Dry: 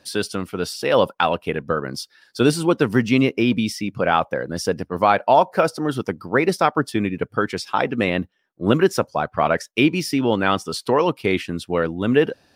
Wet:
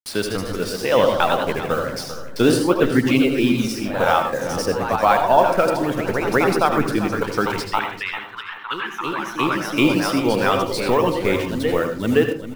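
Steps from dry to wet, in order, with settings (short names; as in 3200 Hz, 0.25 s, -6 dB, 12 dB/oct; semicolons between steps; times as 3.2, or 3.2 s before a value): level-crossing sampler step -31 dBFS; 7.79–9.72 Chebyshev band-pass 860–3600 Hz, order 5; reverb removal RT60 1.5 s; echoes that change speed 0.163 s, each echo +1 st, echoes 3, each echo -6 dB; feedback echo 0.394 s, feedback 31%, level -13 dB; on a send at -6 dB: reverb RT60 0.35 s, pre-delay 73 ms; 4.96–5.46 on the sum: three-band expander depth 70%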